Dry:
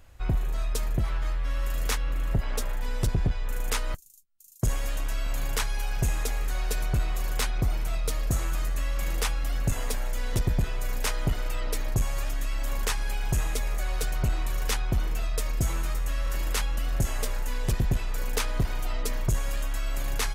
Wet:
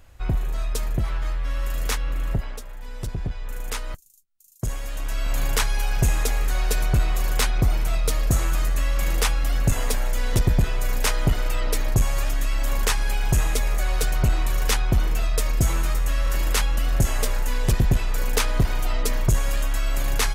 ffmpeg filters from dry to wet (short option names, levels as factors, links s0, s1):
-af "volume=7.5,afade=t=out:st=2.3:d=0.32:silence=0.266073,afade=t=in:st=2.62:d=0.86:silence=0.421697,afade=t=in:st=4.9:d=0.49:silence=0.421697"